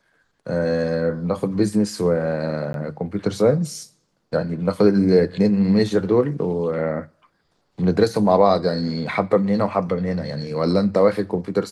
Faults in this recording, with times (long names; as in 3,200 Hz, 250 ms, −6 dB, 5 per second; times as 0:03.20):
0:02.73–0:02.74: drop-out 12 ms